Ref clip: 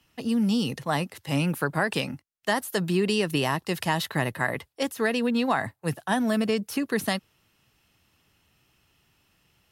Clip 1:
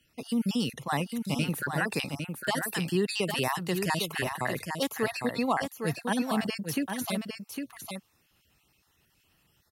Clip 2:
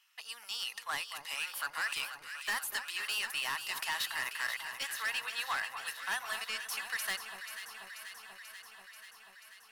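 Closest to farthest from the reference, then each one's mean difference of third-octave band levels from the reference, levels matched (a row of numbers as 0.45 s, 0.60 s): 1, 2; 6.5 dB, 13.5 dB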